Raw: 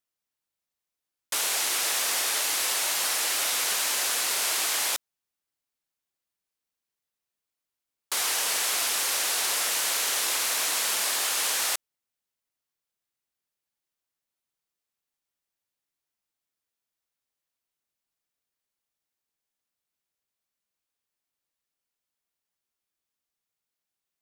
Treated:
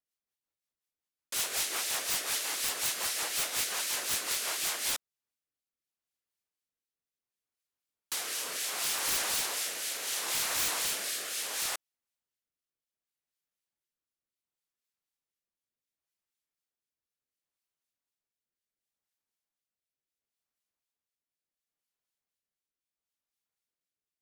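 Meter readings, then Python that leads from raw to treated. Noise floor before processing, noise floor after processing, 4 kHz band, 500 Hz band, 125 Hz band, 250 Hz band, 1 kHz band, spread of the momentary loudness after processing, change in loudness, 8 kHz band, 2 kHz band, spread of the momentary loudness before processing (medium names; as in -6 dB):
under -85 dBFS, under -85 dBFS, -6.5 dB, -5.5 dB, no reading, -3.0 dB, -7.0 dB, 5 LU, -6.5 dB, -6.5 dB, -6.5 dB, 2 LU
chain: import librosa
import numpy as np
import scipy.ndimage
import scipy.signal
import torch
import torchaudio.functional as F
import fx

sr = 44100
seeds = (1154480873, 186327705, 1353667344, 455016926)

y = fx.harmonic_tremolo(x, sr, hz=4.0, depth_pct=50, crossover_hz=1900.0)
y = fx.rotary_switch(y, sr, hz=5.5, then_hz=0.7, switch_at_s=4.57)
y = (np.mod(10.0 ** (21.0 / 20.0) * y + 1.0, 2.0) - 1.0) / 10.0 ** (21.0 / 20.0)
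y = y * 10.0 ** (-1.0 / 20.0)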